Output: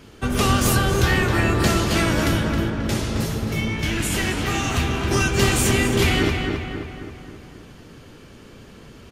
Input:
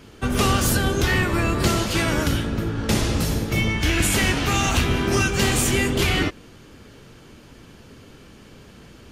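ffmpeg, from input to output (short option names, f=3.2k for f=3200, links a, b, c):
-filter_complex "[0:a]asettb=1/sr,asplit=3[a][b][c];[a]atrim=end=2.704[d];[b]atrim=start=2.7:end=5.11,asetpts=PTS-STARTPTS,afade=t=in:d=0.004:c=qsin,afade=t=out:st=2.406:d=0.004:c=qsin,flanger=delay=6.3:depth=7.2:regen=52:speed=1.6:shape=sinusoidal[e];[c]atrim=start=5.106[f];[d][e]acrossfade=d=0.004:c1=hsin:c2=qsin[g];[g][f]acrossfade=d=0.004:c1=qsin:c2=hsin,asplit=2[h][i];[i]adelay=268,lowpass=f=3k:p=1,volume=-4dB,asplit=2[j][k];[k]adelay=268,lowpass=f=3k:p=1,volume=0.55,asplit=2[l][m];[m]adelay=268,lowpass=f=3k:p=1,volume=0.55,asplit=2[n][o];[o]adelay=268,lowpass=f=3k:p=1,volume=0.55,asplit=2[p][q];[q]adelay=268,lowpass=f=3k:p=1,volume=0.55,asplit=2[r][s];[s]adelay=268,lowpass=f=3k:p=1,volume=0.55,asplit=2[t][u];[u]adelay=268,lowpass=f=3k:p=1,volume=0.55[v];[h][j][l][n][p][r][t][v]amix=inputs=8:normalize=0"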